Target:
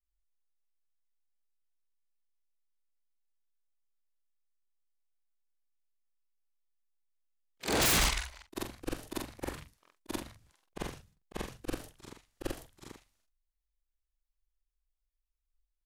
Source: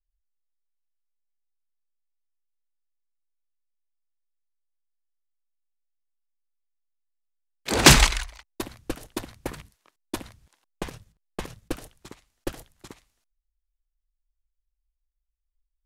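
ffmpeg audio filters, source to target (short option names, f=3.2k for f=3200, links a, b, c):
-af "afftfilt=real='re':imag='-im':win_size=4096:overlap=0.75,aeval=exprs='0.0891*(abs(mod(val(0)/0.0891+3,4)-2)-1)':c=same"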